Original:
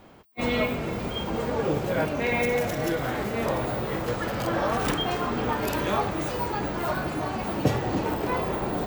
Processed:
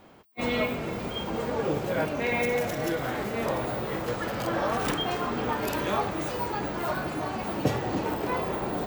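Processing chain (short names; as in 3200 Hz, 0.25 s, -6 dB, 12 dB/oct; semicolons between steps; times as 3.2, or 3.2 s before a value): low shelf 100 Hz -6 dB; gain -1.5 dB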